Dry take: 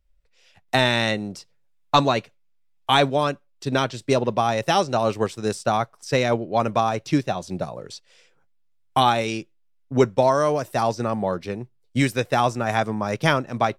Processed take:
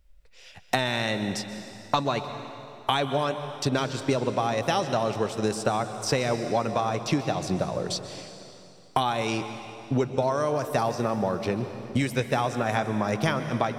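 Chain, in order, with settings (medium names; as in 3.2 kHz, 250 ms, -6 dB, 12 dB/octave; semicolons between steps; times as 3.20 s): compression 6:1, threshold -31 dBFS, peak gain reduction 18 dB; reverberation RT60 2.9 s, pre-delay 118 ms, DRR 8.5 dB; trim +8 dB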